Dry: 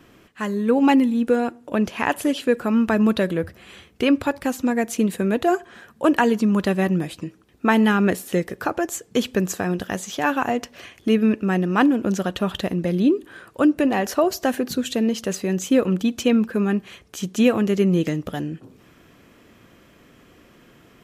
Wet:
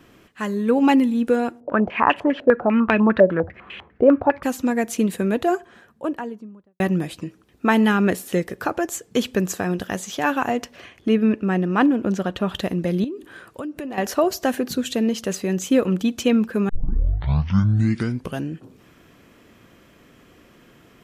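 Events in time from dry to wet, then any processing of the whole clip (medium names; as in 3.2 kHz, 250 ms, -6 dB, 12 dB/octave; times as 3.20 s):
1.60–4.43 s: step-sequenced low-pass 10 Hz 610–2700 Hz
5.17–6.80 s: studio fade out
10.76–12.52 s: treble shelf 4.8 kHz -10 dB
13.04–13.98 s: compression, threshold -28 dBFS
16.69 s: tape start 1.81 s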